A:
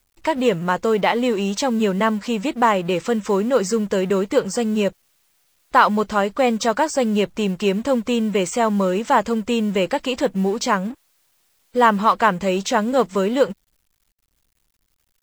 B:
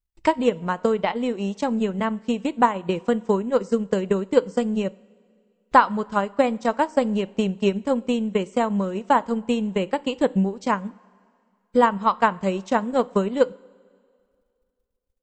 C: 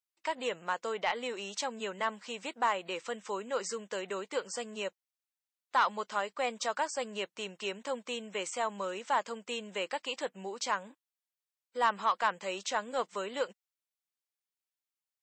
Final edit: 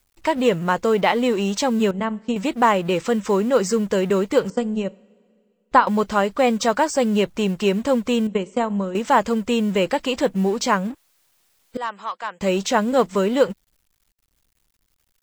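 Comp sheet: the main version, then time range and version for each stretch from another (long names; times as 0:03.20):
A
0:01.91–0:02.36: punch in from B
0:04.50–0:05.87: punch in from B
0:08.27–0:08.95: punch in from B
0:11.77–0:12.41: punch in from C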